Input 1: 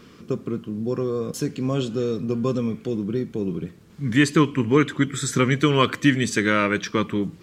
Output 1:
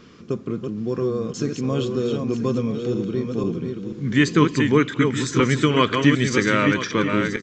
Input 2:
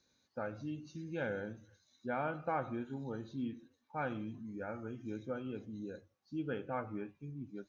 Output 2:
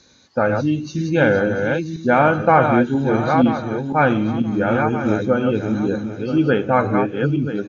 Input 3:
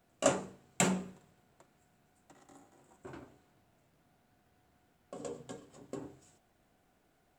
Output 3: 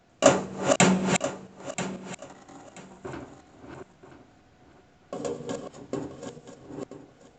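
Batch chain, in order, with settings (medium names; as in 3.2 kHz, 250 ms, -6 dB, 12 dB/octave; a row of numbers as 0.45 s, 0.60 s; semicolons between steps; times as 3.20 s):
backward echo that repeats 491 ms, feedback 43%, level -5 dB; resampled via 16 kHz; peak normalisation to -1.5 dBFS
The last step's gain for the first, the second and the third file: 0.0 dB, +22.0 dB, +10.5 dB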